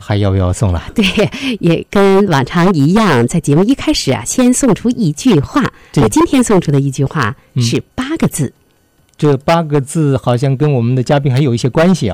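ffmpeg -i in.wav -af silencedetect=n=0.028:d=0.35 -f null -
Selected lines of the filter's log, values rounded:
silence_start: 8.50
silence_end: 9.14 | silence_duration: 0.63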